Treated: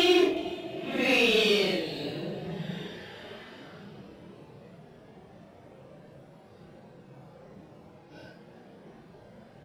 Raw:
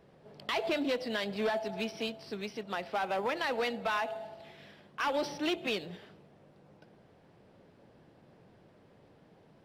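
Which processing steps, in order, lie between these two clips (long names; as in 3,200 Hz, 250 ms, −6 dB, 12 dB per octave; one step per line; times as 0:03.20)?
extreme stretch with random phases 6.2×, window 0.05 s, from 0:05.50
single-tap delay 367 ms −21 dB
level +8.5 dB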